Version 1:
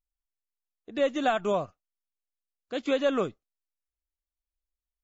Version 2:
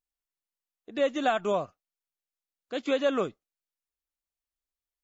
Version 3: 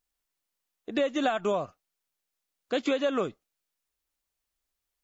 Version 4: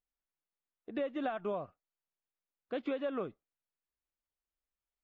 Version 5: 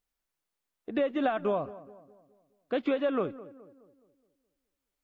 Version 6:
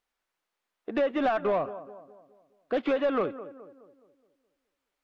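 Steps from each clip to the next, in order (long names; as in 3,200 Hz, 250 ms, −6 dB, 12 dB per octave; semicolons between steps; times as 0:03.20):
low-shelf EQ 93 Hz −11 dB
downward compressor, threshold −32 dBFS, peak gain reduction 11.5 dB; level +8 dB
high-frequency loss of the air 390 metres; level −7.5 dB
feedback echo with a low-pass in the loop 210 ms, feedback 47%, low-pass 1,400 Hz, level −16.5 dB; level +7.5 dB
mid-hump overdrive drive 15 dB, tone 2,000 Hz, clips at −17 dBFS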